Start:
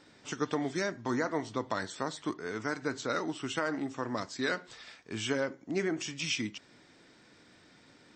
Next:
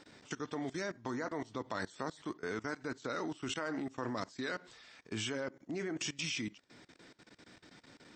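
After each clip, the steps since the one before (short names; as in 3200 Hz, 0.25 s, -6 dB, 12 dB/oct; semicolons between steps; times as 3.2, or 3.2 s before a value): level quantiser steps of 20 dB; gain +2.5 dB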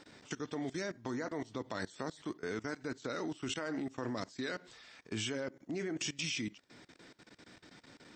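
dynamic EQ 1100 Hz, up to -5 dB, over -51 dBFS, Q 1.2; gain +1 dB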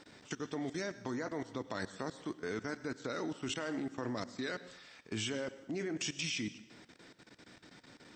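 plate-style reverb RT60 0.86 s, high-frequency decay 0.95×, pre-delay 85 ms, DRR 15 dB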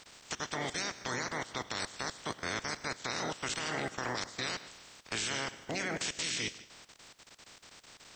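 spectral limiter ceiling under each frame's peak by 25 dB; gain +2.5 dB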